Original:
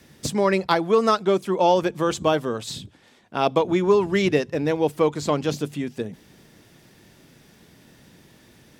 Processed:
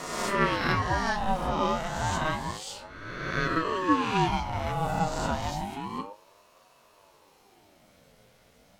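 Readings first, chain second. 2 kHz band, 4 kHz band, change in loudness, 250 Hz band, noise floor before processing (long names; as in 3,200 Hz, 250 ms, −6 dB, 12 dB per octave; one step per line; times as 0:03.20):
+0.5 dB, −4.0 dB, −6.5 dB, −7.0 dB, −55 dBFS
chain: peak hold with a rise ahead of every peak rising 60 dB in 1.52 s
tuned comb filter 100 Hz, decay 0.26 s, harmonics all, mix 80%
ring modulator whose carrier an LFO sweeps 580 Hz, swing 45%, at 0.3 Hz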